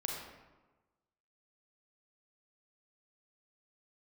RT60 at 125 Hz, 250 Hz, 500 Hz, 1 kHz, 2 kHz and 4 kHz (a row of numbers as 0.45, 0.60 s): 1.3, 1.2, 1.2, 1.2, 0.95, 0.70 s